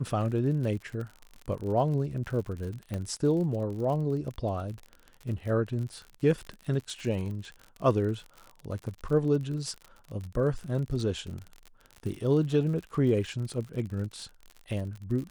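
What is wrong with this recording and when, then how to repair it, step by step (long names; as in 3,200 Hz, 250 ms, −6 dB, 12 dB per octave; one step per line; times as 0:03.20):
surface crackle 54 per second −36 dBFS
0:02.94: click −21 dBFS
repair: click removal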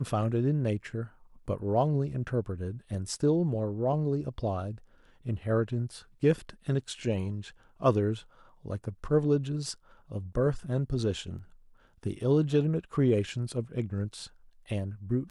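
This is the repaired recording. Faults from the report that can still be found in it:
none of them is left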